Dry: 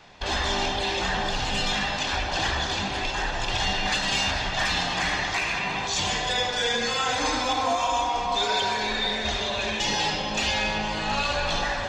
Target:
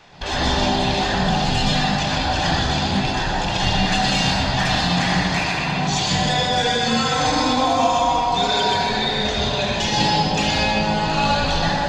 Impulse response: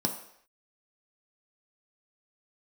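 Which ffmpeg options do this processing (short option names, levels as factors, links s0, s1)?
-filter_complex "[0:a]asplit=2[s0][s1];[s1]lowshelf=f=110:g=11.5[s2];[1:a]atrim=start_sample=2205,asetrate=37485,aresample=44100,adelay=123[s3];[s2][s3]afir=irnorm=-1:irlink=0,volume=0.398[s4];[s0][s4]amix=inputs=2:normalize=0,volume=1.26"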